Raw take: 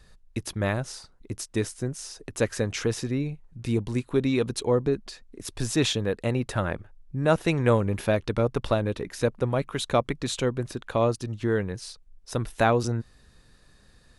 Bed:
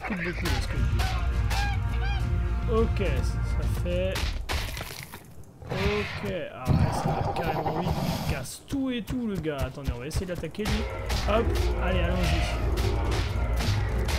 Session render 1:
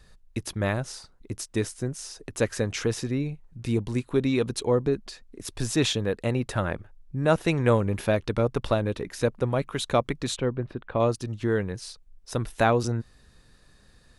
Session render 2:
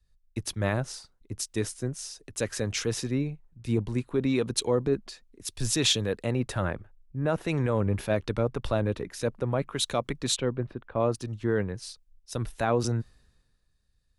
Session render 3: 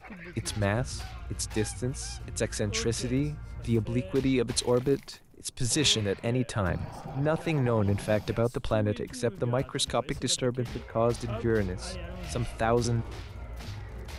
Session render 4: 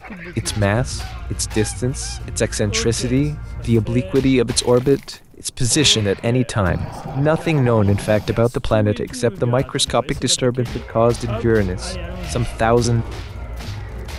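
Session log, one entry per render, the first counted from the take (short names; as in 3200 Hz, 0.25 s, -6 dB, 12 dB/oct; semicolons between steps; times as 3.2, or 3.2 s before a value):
10.36–11 air absorption 430 m
limiter -17 dBFS, peak gain reduction 9 dB; three-band expander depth 70%
add bed -13.5 dB
gain +10.5 dB; limiter -2 dBFS, peak gain reduction 1.5 dB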